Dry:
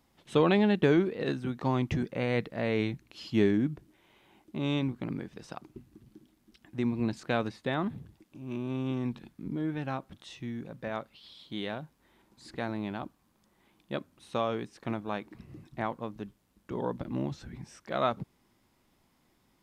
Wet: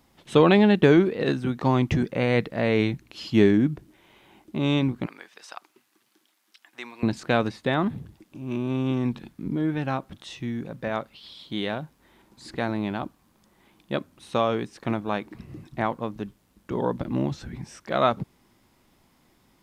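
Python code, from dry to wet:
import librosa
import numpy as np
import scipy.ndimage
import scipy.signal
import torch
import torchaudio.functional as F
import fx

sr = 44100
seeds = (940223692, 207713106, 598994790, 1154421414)

y = fx.highpass(x, sr, hz=1000.0, slope=12, at=(5.06, 7.03))
y = y * 10.0 ** (7.0 / 20.0)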